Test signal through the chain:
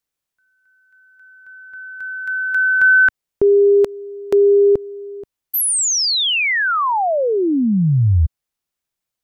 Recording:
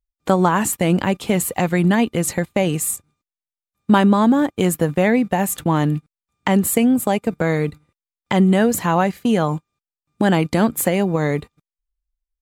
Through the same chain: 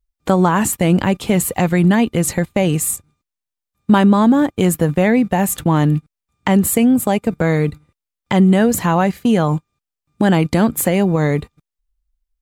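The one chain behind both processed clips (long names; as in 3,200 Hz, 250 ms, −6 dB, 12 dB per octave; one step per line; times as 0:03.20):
low-shelf EQ 140 Hz +7 dB
in parallel at −2.5 dB: brickwall limiter −12.5 dBFS
on the sum: level −2 dB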